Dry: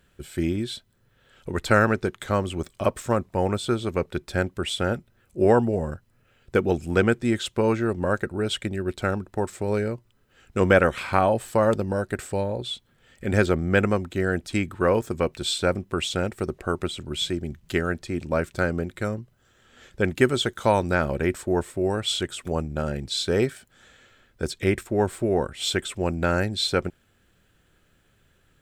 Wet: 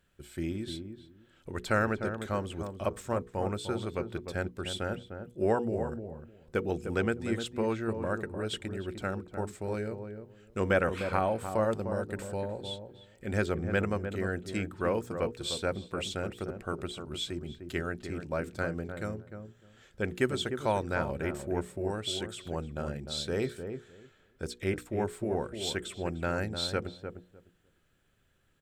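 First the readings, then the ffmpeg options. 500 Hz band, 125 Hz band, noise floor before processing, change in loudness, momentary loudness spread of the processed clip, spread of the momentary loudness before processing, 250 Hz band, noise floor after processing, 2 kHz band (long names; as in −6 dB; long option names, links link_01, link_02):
−8.5 dB, −8.5 dB, −64 dBFS, −8.5 dB, 12 LU, 9 LU, −8.5 dB, −66 dBFS, −8.5 dB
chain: -filter_complex "[0:a]bandreject=frequency=60:width_type=h:width=6,bandreject=frequency=120:width_type=h:width=6,bandreject=frequency=180:width_type=h:width=6,bandreject=frequency=240:width_type=h:width=6,bandreject=frequency=300:width_type=h:width=6,bandreject=frequency=360:width_type=h:width=6,bandreject=frequency=420:width_type=h:width=6,bandreject=frequency=480:width_type=h:width=6,asplit=2[link_01][link_02];[link_02]adelay=302,lowpass=frequency=1000:poles=1,volume=-7dB,asplit=2[link_03][link_04];[link_04]adelay=302,lowpass=frequency=1000:poles=1,volume=0.17,asplit=2[link_05][link_06];[link_06]adelay=302,lowpass=frequency=1000:poles=1,volume=0.17[link_07];[link_01][link_03][link_05][link_07]amix=inputs=4:normalize=0,volume=-8.5dB"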